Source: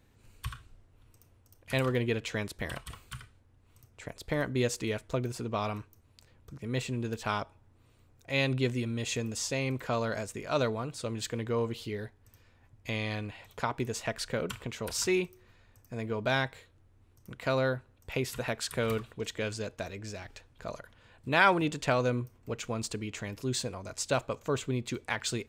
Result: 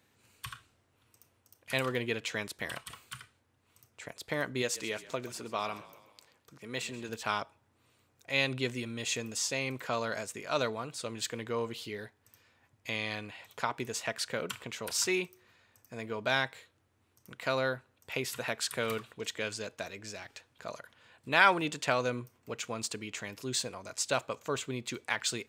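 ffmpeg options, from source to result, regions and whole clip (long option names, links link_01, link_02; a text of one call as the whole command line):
ffmpeg -i in.wav -filter_complex "[0:a]asettb=1/sr,asplit=3[link_01][link_02][link_03];[link_01]atrim=end=4.624[link_04];[link_02]atrim=start=4.62:end=7.09,asetpts=PTS-STARTPTS,afade=type=in:duration=0.004:curve=qsin,afade=type=out:start_time=2.466:duration=0.004:curve=qsin,lowshelf=frequency=160:gain=-9.5,asplit=6[link_05][link_06][link_07][link_08][link_09][link_10];[link_06]adelay=131,afreqshift=-33,volume=-16.5dB[link_11];[link_07]adelay=262,afreqshift=-66,volume=-21.9dB[link_12];[link_08]adelay=393,afreqshift=-99,volume=-27.2dB[link_13];[link_09]adelay=524,afreqshift=-132,volume=-32.6dB[link_14];[link_10]adelay=655,afreqshift=-165,volume=-37.9dB[link_15];[link_05][link_11][link_12][link_13][link_14][link_15]amix=inputs=6:normalize=0,atrim=end_sample=108927[link_16];[link_03]atrim=start=7.086[link_17];[link_04][link_16]acrossfade=duration=0.004:curve1=hsin:curve2=qsin[link_18];[link_18][link_17]acrossfade=duration=0.004:curve1=qsin:curve2=hsin,highpass=120,tiltshelf=frequency=650:gain=-4,volume=-2dB" out.wav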